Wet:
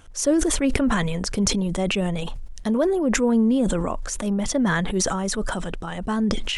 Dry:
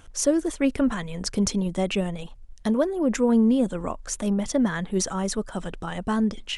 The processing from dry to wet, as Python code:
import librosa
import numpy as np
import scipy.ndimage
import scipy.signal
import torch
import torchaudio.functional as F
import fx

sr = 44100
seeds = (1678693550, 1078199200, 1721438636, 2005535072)

y = fx.sustainer(x, sr, db_per_s=23.0)